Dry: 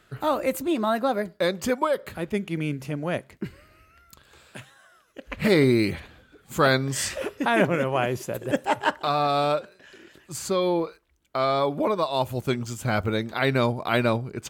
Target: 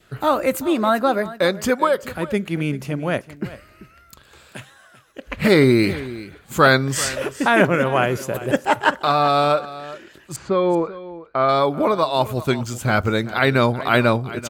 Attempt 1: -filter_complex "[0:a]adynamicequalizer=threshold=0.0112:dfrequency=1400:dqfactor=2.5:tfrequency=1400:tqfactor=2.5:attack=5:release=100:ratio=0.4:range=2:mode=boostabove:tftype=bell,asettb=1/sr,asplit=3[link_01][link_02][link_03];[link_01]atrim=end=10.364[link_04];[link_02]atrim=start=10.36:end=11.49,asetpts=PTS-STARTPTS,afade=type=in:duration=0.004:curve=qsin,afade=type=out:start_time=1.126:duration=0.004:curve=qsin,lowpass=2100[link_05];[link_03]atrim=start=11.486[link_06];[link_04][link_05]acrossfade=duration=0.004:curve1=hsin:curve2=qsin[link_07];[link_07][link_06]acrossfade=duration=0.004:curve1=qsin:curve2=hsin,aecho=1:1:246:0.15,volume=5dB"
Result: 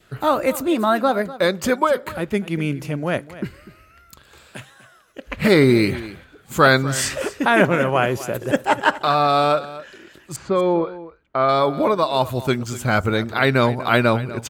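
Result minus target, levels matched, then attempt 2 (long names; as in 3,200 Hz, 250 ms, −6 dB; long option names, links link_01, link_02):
echo 142 ms early
-filter_complex "[0:a]adynamicequalizer=threshold=0.0112:dfrequency=1400:dqfactor=2.5:tfrequency=1400:tqfactor=2.5:attack=5:release=100:ratio=0.4:range=2:mode=boostabove:tftype=bell,asettb=1/sr,asplit=3[link_01][link_02][link_03];[link_01]atrim=end=10.364[link_04];[link_02]atrim=start=10.36:end=11.49,asetpts=PTS-STARTPTS,afade=type=in:duration=0.004:curve=qsin,afade=type=out:start_time=1.126:duration=0.004:curve=qsin,lowpass=2100[link_05];[link_03]atrim=start=11.486[link_06];[link_04][link_05]acrossfade=duration=0.004:curve1=hsin:curve2=qsin[link_07];[link_07][link_06]acrossfade=duration=0.004:curve1=qsin:curve2=hsin,aecho=1:1:388:0.15,volume=5dB"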